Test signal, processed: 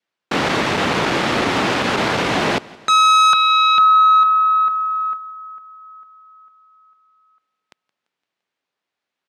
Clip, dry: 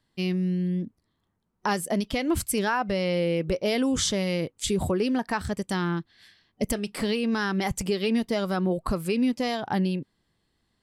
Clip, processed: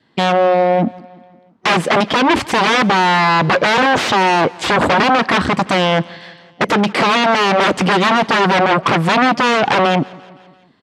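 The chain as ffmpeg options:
-filter_complex "[0:a]agate=range=-7dB:threshold=-50dB:ratio=16:detection=peak,adynamicequalizer=threshold=0.00447:dfrequency=1100:dqfactor=6.1:tfrequency=1100:tqfactor=6.1:attack=5:release=100:ratio=0.375:range=3.5:mode=boostabove:tftype=bell,aeval=exprs='0.2*(cos(1*acos(clip(val(0)/0.2,-1,1)))-cos(1*PI/2))+0.0178*(cos(6*acos(clip(val(0)/0.2,-1,1)))-cos(6*PI/2))+0.0891*(cos(7*acos(clip(val(0)/0.2,-1,1)))-cos(7*PI/2))':c=same,asplit=2[a][b];[b]aeval=exprs='0.251*sin(PI/2*4.47*val(0)/0.251)':c=same,volume=-8dB[c];[a][c]amix=inputs=2:normalize=0,highpass=180,lowpass=3.2k,aecho=1:1:171|342|513|684:0.0708|0.0418|0.0246|0.0145,volume=7.5dB"

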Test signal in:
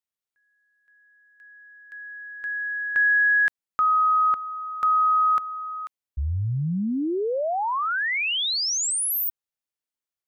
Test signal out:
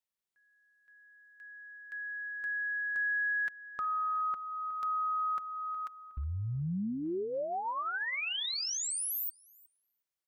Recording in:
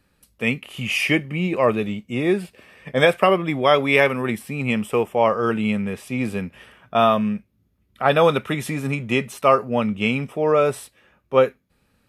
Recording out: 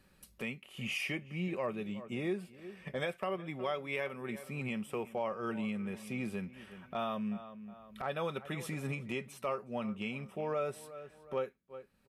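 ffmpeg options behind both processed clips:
-filter_complex "[0:a]aecho=1:1:5.3:0.32,asplit=2[a][b];[b]adelay=365,lowpass=f=3k:p=1,volume=-19dB,asplit=2[c][d];[d]adelay=365,lowpass=f=3k:p=1,volume=0.23[e];[c][e]amix=inputs=2:normalize=0[f];[a][f]amix=inputs=2:normalize=0,acompressor=threshold=-32dB:ratio=3:attack=0.18:release=575:knee=1:detection=rms,volume=-2dB"

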